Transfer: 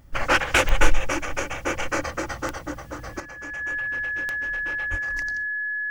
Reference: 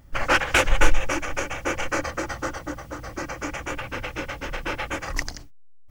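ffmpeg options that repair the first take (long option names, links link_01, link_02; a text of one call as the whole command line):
ffmpeg -i in.wav -filter_complex "[0:a]adeclick=threshold=4,bandreject=frequency=1700:width=30,asplit=3[link_01][link_02][link_03];[link_01]afade=type=out:start_time=4.9:duration=0.02[link_04];[link_02]highpass=frequency=140:width=0.5412,highpass=frequency=140:width=1.3066,afade=type=in:start_time=4.9:duration=0.02,afade=type=out:start_time=5.02:duration=0.02[link_05];[link_03]afade=type=in:start_time=5.02:duration=0.02[link_06];[link_04][link_05][link_06]amix=inputs=3:normalize=0,asetnsamples=nb_out_samples=441:pad=0,asendcmd='3.2 volume volume 10.5dB',volume=0dB" out.wav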